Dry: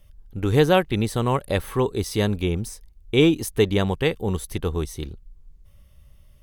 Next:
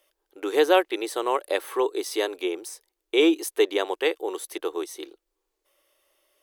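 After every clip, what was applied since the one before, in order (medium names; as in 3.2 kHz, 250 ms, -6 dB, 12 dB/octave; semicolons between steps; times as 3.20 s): elliptic high-pass 330 Hz, stop band 40 dB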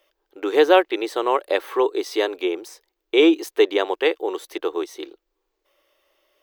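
peaking EQ 10 kHz -14.5 dB 0.97 oct; trim +4.5 dB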